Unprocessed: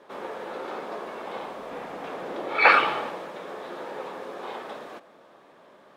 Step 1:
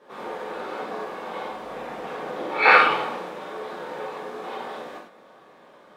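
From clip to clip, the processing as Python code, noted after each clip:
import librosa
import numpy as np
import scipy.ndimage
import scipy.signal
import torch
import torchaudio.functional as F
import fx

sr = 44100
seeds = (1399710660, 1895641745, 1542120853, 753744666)

y = fx.rev_gated(x, sr, seeds[0], gate_ms=120, shape='flat', drr_db=-7.0)
y = fx.end_taper(y, sr, db_per_s=100.0)
y = y * librosa.db_to_amplitude(-5.0)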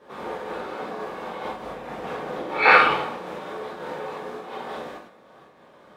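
y = fx.peak_eq(x, sr, hz=79.0, db=11.5, octaves=1.7)
y = fx.am_noise(y, sr, seeds[1], hz=5.7, depth_pct=60)
y = y * librosa.db_to_amplitude(2.5)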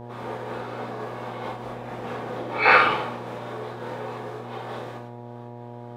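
y = fx.dmg_buzz(x, sr, base_hz=120.0, harmonics=8, level_db=-38.0, tilt_db=-3, odd_only=False)
y = y * librosa.db_to_amplitude(-1.5)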